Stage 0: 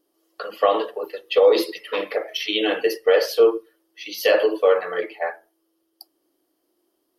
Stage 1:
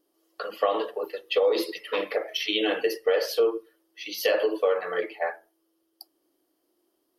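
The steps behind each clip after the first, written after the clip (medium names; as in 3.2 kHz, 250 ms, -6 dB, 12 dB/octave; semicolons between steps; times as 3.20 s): compression 2.5:1, threshold -19 dBFS, peak gain reduction 6.5 dB; trim -2 dB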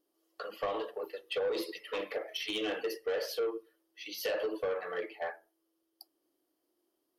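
saturation -20 dBFS, distortion -14 dB; trim -7 dB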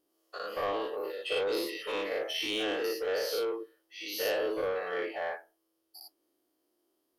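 every event in the spectrogram widened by 120 ms; trim -2 dB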